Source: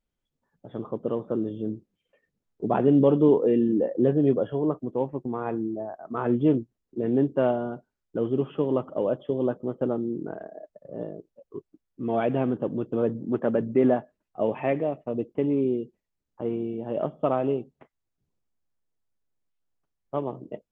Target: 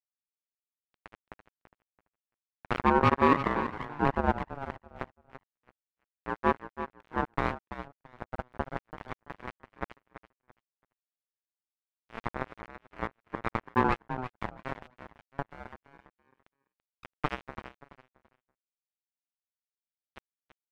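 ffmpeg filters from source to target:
ffmpeg -i in.wav -af "afftfilt=real='re*gte(hypot(re,im),0.158)':imag='im*gte(hypot(re,im),0.158)':win_size=1024:overlap=0.75,lowshelf=frequency=270:gain=-2.5,acrusher=bits=2:mix=0:aa=0.5,aeval=exprs='sgn(val(0))*max(abs(val(0))-0.00376,0)':channel_layout=same,aecho=1:1:335|670|1005:0.282|0.0648|0.0149,aeval=exprs='val(0)*sin(2*PI*530*n/s+530*0.3/0.3*sin(2*PI*0.3*n/s))':channel_layout=same" out.wav

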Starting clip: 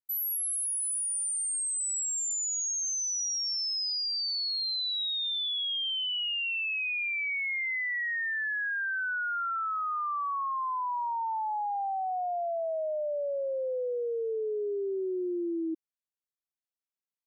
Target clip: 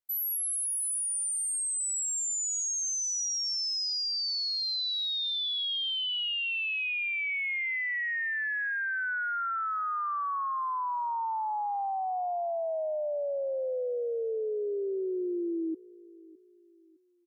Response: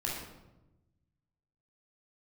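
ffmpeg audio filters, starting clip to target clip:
-af "aecho=1:1:610|1220|1830:0.0891|0.0339|0.0129"

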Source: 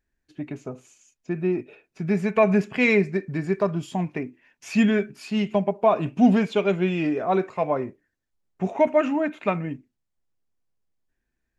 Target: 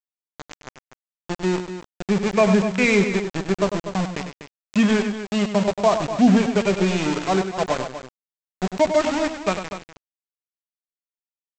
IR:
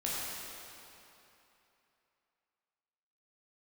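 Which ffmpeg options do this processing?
-af "adynamicequalizer=threshold=0.0178:dfrequency=190:dqfactor=7.5:tfrequency=190:tqfactor=7.5:attack=5:release=100:ratio=0.375:range=2:mode=boostabove:tftype=bell,aresample=16000,aeval=exprs='val(0)*gte(abs(val(0)),0.0708)':channel_layout=same,aresample=44100,aecho=1:1:99.13|244.9:0.355|0.282,volume=1dB"

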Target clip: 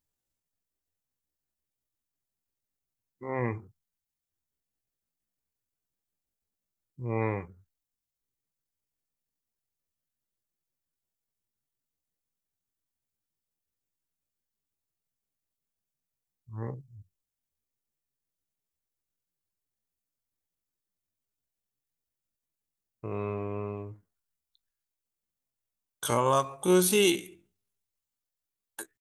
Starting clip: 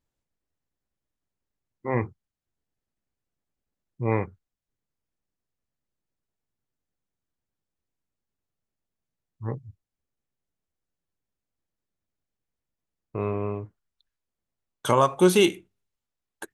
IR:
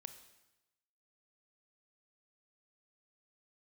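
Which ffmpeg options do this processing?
-af "atempo=0.57,crystalizer=i=2:c=0,volume=-6dB"

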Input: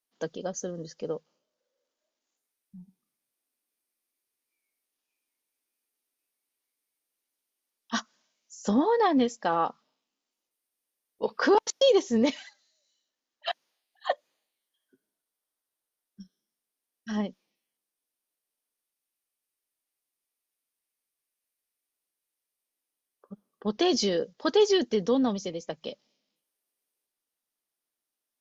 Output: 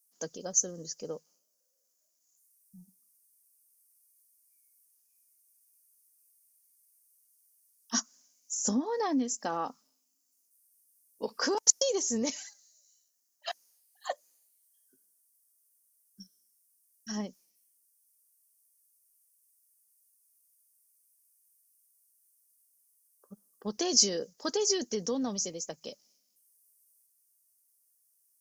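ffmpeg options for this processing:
ffmpeg -i in.wav -filter_complex "[0:a]asettb=1/sr,asplit=3[link_01][link_02][link_03];[link_01]atrim=end=7.944[link_04];[link_02]atrim=start=7.94:end=11.45,asetpts=PTS-STARTPTS,afade=type=in:duration=0.004:curve=qsin,afade=type=out:start_time=3.506:duration=0.004:curve=qsin,equalizer=frequency=260:width_type=o:width=0.37:gain=9.5[link_05];[link_03]atrim=start=11.446[link_06];[link_04][link_05]acrossfade=duration=0.004:curve1=hsin:curve2=qsin[link_07];[link_07][link_06]acrossfade=duration=0.004:curve1=qsin:curve2=hsin,acompressor=threshold=-21dB:ratio=4,aexciter=amount=13.5:drive=3.4:freq=5300,volume=-6dB" out.wav

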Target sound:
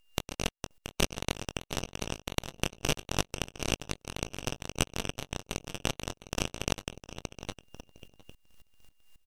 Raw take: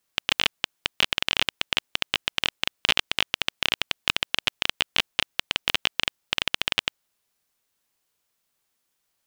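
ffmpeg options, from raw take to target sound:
ffmpeg -i in.wav -filter_complex "[0:a]acrossover=split=250|1100[link_01][link_02][link_03];[link_03]acompressor=mode=upward:threshold=-39dB:ratio=2.5[link_04];[link_01][link_02][link_04]amix=inputs=3:normalize=0,apsyclip=9dB,bandreject=frequency=6200:width=6.2,acompressor=threshold=-22dB:ratio=2.5,aeval=exprs='val(0)*sin(2*PI*1400*n/s)':channel_layout=same,asplit=2[link_05][link_06];[link_06]adelay=21,volume=-13dB[link_07];[link_05][link_07]amix=inputs=2:normalize=0,aecho=1:1:708|1416|2124|2832:0.473|0.166|0.058|0.0203,aeval=exprs='abs(val(0))':channel_layout=same,afftdn=noise_reduction=14:noise_floor=-43,aeval=exprs='val(0)*pow(10,-20*if(lt(mod(-3.7*n/s,1),2*abs(-3.7)/1000),1-mod(-3.7*n/s,1)/(2*abs(-3.7)/1000),(mod(-3.7*n/s,1)-2*abs(-3.7)/1000)/(1-2*abs(-3.7)/1000))/20)':channel_layout=same,volume=2dB" out.wav

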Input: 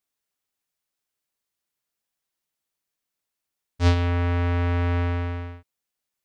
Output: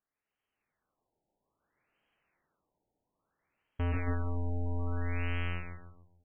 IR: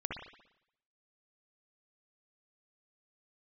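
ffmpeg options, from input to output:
-filter_complex "[0:a]bandreject=frequency=45.31:width_type=h:width=4,bandreject=frequency=90.62:width_type=h:width=4,bandreject=frequency=135.93:width_type=h:width=4,bandreject=frequency=181.24:width_type=h:width=4,bandreject=frequency=226.55:width_type=h:width=4,bandreject=frequency=271.86:width_type=h:width=4,bandreject=frequency=317.17:width_type=h:width=4,bandreject=frequency=362.48:width_type=h:width=4,bandreject=frequency=407.79:width_type=h:width=4,bandreject=frequency=453.1:width_type=h:width=4,bandreject=frequency=498.41:width_type=h:width=4,bandreject=frequency=543.72:width_type=h:width=4,bandreject=frequency=589.03:width_type=h:width=4,bandreject=frequency=634.34:width_type=h:width=4,bandreject=frequency=679.65:width_type=h:width=4,bandreject=frequency=724.96:width_type=h:width=4,bandreject=frequency=770.27:width_type=h:width=4,bandreject=frequency=815.58:width_type=h:width=4,bandreject=frequency=860.89:width_type=h:width=4,bandreject=frequency=906.2:width_type=h:width=4,bandreject=frequency=951.51:width_type=h:width=4,bandreject=frequency=996.82:width_type=h:width=4,bandreject=frequency=1042.13:width_type=h:width=4,bandreject=frequency=1087.44:width_type=h:width=4,bandreject=frequency=1132.75:width_type=h:width=4,bandreject=frequency=1178.06:width_type=h:width=4,bandreject=frequency=1223.37:width_type=h:width=4,bandreject=frequency=1268.68:width_type=h:width=4,bandreject=frequency=1313.99:width_type=h:width=4,bandreject=frequency=1359.3:width_type=h:width=4,bandreject=frequency=1404.61:width_type=h:width=4,bandreject=frequency=1449.92:width_type=h:width=4,bandreject=frequency=1495.23:width_type=h:width=4,bandreject=frequency=1540.54:width_type=h:width=4,bandreject=frequency=1585.85:width_type=h:width=4,dynaudnorm=framelen=210:gausssize=7:maxgain=13.5dB,aeval=exprs='(tanh(31.6*val(0)+0.35)-tanh(0.35))/31.6':channel_layout=same,asplit=2[link_01][link_02];[link_02]aecho=0:1:143|286|429|572|715:0.501|0.216|0.0927|0.0398|0.0171[link_03];[link_01][link_03]amix=inputs=2:normalize=0,afftfilt=real='re*lt(b*sr/1024,920*pow(3300/920,0.5+0.5*sin(2*PI*0.6*pts/sr)))':imag='im*lt(b*sr/1024,920*pow(3300/920,0.5+0.5*sin(2*PI*0.6*pts/sr)))':win_size=1024:overlap=0.75"

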